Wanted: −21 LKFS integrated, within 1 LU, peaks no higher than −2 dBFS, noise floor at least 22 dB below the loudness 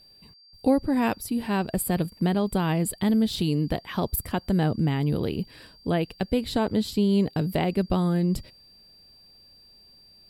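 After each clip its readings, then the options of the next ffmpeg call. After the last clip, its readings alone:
interfering tone 4,700 Hz; level of the tone −52 dBFS; integrated loudness −25.5 LKFS; sample peak −10.0 dBFS; target loudness −21.0 LKFS
→ -af "bandreject=frequency=4700:width=30"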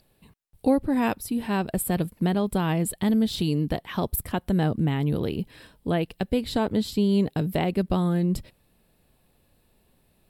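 interfering tone none found; integrated loudness −25.5 LKFS; sample peak −10.0 dBFS; target loudness −21.0 LKFS
→ -af "volume=4.5dB"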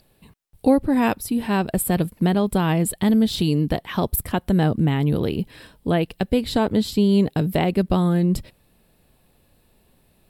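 integrated loudness −21.0 LKFS; sample peak −5.5 dBFS; background noise floor −61 dBFS

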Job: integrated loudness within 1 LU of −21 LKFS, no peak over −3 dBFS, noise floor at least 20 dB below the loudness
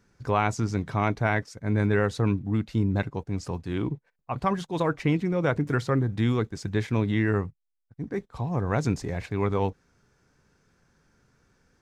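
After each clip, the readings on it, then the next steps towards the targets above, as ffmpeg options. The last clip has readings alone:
integrated loudness −27.5 LKFS; sample peak −11.5 dBFS; target loudness −21.0 LKFS
→ -af "volume=6.5dB"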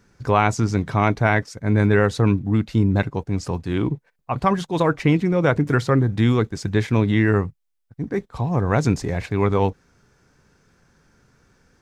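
integrated loudness −21.0 LKFS; sample peak −5.0 dBFS; background noise floor −71 dBFS

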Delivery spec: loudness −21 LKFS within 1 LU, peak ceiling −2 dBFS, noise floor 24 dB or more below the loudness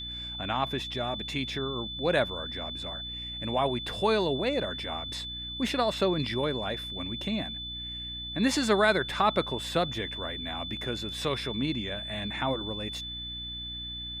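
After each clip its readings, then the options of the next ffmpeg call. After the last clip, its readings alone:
mains hum 60 Hz; hum harmonics up to 300 Hz; level of the hum −42 dBFS; interfering tone 3,500 Hz; level of the tone −36 dBFS; integrated loudness −30.0 LKFS; sample peak −11.5 dBFS; target loudness −21.0 LKFS
→ -af "bandreject=frequency=60:width_type=h:width=4,bandreject=frequency=120:width_type=h:width=4,bandreject=frequency=180:width_type=h:width=4,bandreject=frequency=240:width_type=h:width=4,bandreject=frequency=300:width_type=h:width=4"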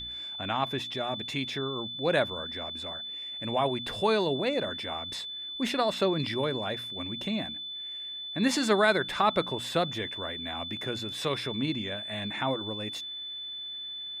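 mains hum none found; interfering tone 3,500 Hz; level of the tone −36 dBFS
→ -af "bandreject=frequency=3500:width=30"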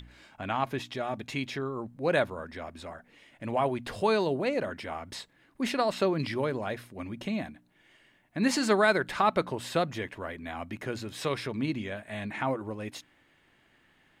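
interfering tone none found; integrated loudness −31.0 LKFS; sample peak −11.0 dBFS; target loudness −21.0 LKFS
→ -af "volume=10dB,alimiter=limit=-2dB:level=0:latency=1"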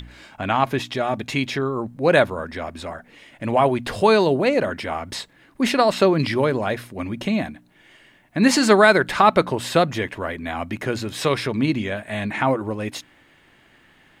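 integrated loudness −21.0 LKFS; sample peak −2.0 dBFS; background noise floor −56 dBFS

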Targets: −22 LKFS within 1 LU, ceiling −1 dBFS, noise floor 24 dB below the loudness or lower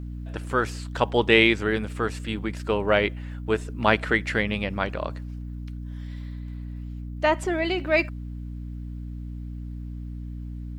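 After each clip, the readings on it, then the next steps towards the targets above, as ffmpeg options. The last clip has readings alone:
mains hum 60 Hz; hum harmonics up to 300 Hz; level of the hum −32 dBFS; integrated loudness −24.5 LKFS; sample peak −2.0 dBFS; target loudness −22.0 LKFS
→ -af "bandreject=frequency=60:width_type=h:width=4,bandreject=frequency=120:width_type=h:width=4,bandreject=frequency=180:width_type=h:width=4,bandreject=frequency=240:width_type=h:width=4,bandreject=frequency=300:width_type=h:width=4"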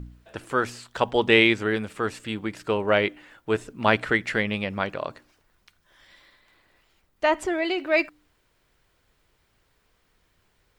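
mains hum none found; integrated loudness −24.5 LKFS; sample peak −2.5 dBFS; target loudness −22.0 LKFS
→ -af "volume=2.5dB,alimiter=limit=-1dB:level=0:latency=1"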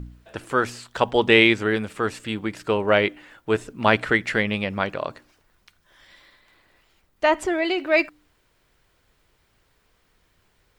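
integrated loudness −22.0 LKFS; sample peak −1.0 dBFS; background noise floor −66 dBFS

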